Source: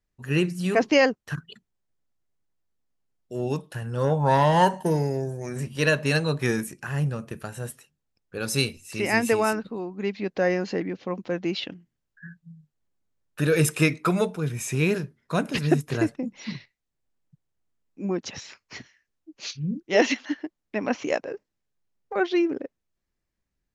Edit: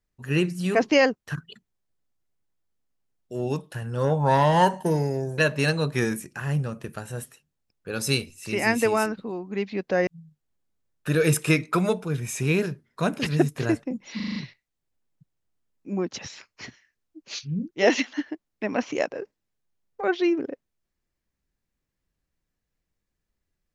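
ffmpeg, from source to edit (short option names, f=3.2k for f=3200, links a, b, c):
-filter_complex "[0:a]asplit=8[a][b][c][d][e][f][g][h];[a]atrim=end=5.382[i];[b]atrim=start=5.848:end=10.542[j];[c]atrim=start=12.388:end=16.522[k];[d]atrim=start=16.478:end=16.522[l];[e]atrim=start=16.478:end=16.522[m];[f]atrim=start=16.478:end=16.522[n];[g]atrim=start=16.478:end=16.522[o];[h]atrim=start=16.478[p];[i][j]acrossfade=d=0.004:c1=hsin:c2=hsin[q];[q][k]acrossfade=d=0.004:c1=hsin:c2=hsin[r];[r][l]acrossfade=d=0.004:c1=hsin:c2=hsin[s];[s][m]acrossfade=d=0.004:c1=hsin:c2=hsin[t];[t][n]acrossfade=d=0.004:c1=hsin:c2=hsin[u];[u][o]acrossfade=d=0.004:c1=hsin:c2=hsin[v];[v][p]acrossfade=d=0.004:c1=hsin:c2=hsin"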